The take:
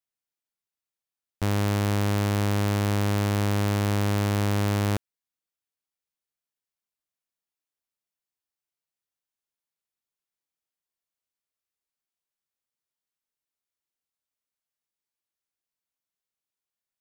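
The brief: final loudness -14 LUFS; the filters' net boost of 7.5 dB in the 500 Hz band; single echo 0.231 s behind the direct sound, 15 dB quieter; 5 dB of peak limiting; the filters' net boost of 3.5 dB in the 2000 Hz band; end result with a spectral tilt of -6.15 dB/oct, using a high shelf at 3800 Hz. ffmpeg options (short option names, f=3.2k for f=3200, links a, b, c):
-af "equalizer=f=500:t=o:g=9,equalizer=f=2k:t=o:g=5,highshelf=f=3.8k:g=-5,alimiter=limit=-17.5dB:level=0:latency=1,aecho=1:1:231:0.178,volume=14dB"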